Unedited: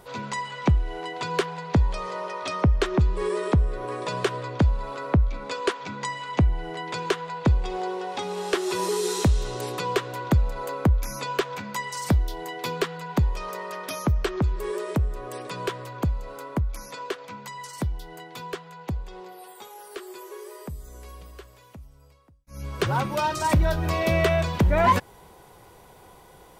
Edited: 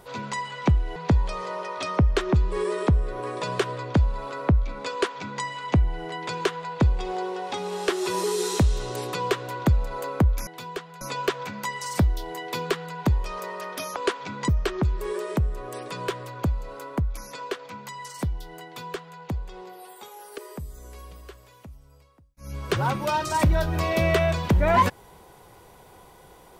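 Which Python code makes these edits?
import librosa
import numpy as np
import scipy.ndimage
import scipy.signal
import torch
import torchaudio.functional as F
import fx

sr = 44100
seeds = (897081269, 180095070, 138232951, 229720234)

y = fx.edit(x, sr, fx.cut(start_s=0.96, length_s=0.65),
    fx.duplicate(start_s=5.56, length_s=0.52, to_s=14.07),
    fx.duplicate(start_s=18.24, length_s=0.54, to_s=11.12),
    fx.cut(start_s=19.97, length_s=0.51), tone=tone)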